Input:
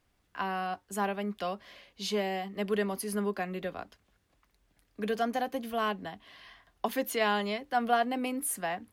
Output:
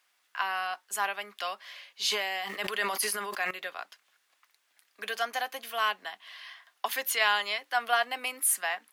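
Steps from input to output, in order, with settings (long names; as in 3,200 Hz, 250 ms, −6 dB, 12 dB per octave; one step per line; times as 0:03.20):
high-pass filter 1,200 Hz 12 dB per octave
0:02.04–0:03.51: level that may fall only so fast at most 38 dB per second
level +7.5 dB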